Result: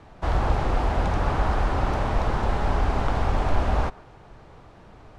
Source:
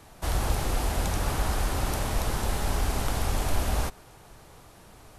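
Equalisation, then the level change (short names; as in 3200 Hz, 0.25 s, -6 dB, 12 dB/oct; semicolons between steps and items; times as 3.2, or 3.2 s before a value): LPF 2000 Hz 6 dB/oct; dynamic EQ 970 Hz, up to +4 dB, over -47 dBFS, Q 0.75; air absorption 77 m; +4.0 dB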